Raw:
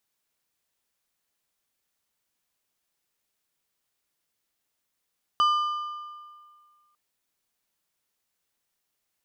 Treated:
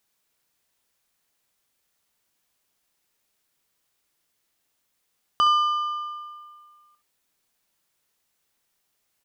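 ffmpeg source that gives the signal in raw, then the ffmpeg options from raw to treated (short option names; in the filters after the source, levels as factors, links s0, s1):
-f lavfi -i "aevalsrc='0.141*pow(10,-3*t/1.9)*sin(2*PI*1200*t)+0.0447*pow(10,-3*t/1.443)*sin(2*PI*3000*t)+0.0141*pow(10,-3*t/1.254)*sin(2*PI*4800*t)+0.00447*pow(10,-3*t/1.172)*sin(2*PI*6000*t)+0.00141*pow(10,-3*t/1.084)*sin(2*PI*7800*t)':d=1.55:s=44100"
-filter_complex "[0:a]asplit=2[s0][s1];[s1]acompressor=threshold=0.0224:ratio=6,volume=0.794[s2];[s0][s2]amix=inputs=2:normalize=0,aecho=1:1:25|66:0.168|0.299"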